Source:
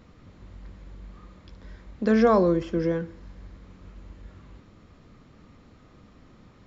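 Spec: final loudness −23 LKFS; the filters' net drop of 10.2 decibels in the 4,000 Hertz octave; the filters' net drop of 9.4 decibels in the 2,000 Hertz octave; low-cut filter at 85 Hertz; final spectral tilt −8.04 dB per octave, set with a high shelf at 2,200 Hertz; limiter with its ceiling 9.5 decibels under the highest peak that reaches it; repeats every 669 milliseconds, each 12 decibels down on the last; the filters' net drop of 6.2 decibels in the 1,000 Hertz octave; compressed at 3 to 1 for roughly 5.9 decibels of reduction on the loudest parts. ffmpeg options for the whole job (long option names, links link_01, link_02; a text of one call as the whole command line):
ffmpeg -i in.wav -af "highpass=85,equalizer=frequency=1000:width_type=o:gain=-5,equalizer=frequency=2000:width_type=o:gain=-6,highshelf=frequency=2200:gain=-8,equalizer=frequency=4000:width_type=o:gain=-3.5,acompressor=threshold=-24dB:ratio=3,alimiter=level_in=0.5dB:limit=-24dB:level=0:latency=1,volume=-0.5dB,aecho=1:1:669|1338|2007:0.251|0.0628|0.0157,volume=12dB" out.wav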